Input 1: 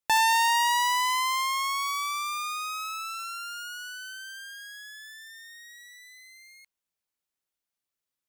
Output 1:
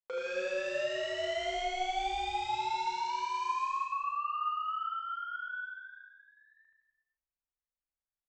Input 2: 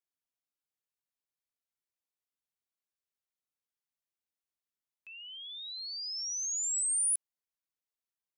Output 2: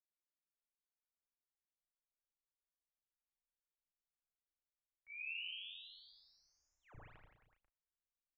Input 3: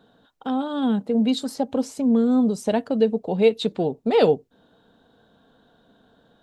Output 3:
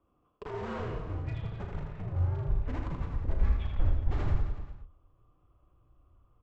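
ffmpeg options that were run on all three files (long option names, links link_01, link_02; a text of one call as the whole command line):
ffmpeg -i in.wav -filter_complex "[0:a]agate=range=-24dB:threshold=-47dB:ratio=16:detection=peak,asplit=2[link_01][link_02];[link_02]highpass=frequency=720:poles=1,volume=23dB,asoftclip=type=tanh:threshold=-6.5dB[link_03];[link_01][link_03]amix=inputs=2:normalize=0,lowpass=frequency=1200:poles=1,volume=-6dB,acompressor=threshold=-40dB:ratio=2,alimiter=level_in=2.5dB:limit=-24dB:level=0:latency=1:release=243,volume=-2.5dB,highpass=frequency=320:width_type=q:width=0.5412,highpass=frequency=320:width_type=q:width=1.307,lowpass=frequency=2800:width_type=q:width=0.5176,lowpass=frequency=2800:width_type=q:width=0.7071,lowpass=frequency=2800:width_type=q:width=1.932,afreqshift=-370,aresample=16000,aeval=exprs='0.0251*(abs(mod(val(0)/0.0251+3,4)-2)-1)':channel_layout=same,aresample=44100,flanger=delay=3.2:depth=3.7:regen=-32:speed=1.8:shape=sinusoidal,asplit=2[link_04][link_05];[link_05]adelay=35,volume=-7dB[link_06];[link_04][link_06]amix=inputs=2:normalize=0,aecho=1:1:80|168|264.8|371.3|488.4:0.631|0.398|0.251|0.158|0.1,asubboost=boost=10:cutoff=75,volume=3dB" out.wav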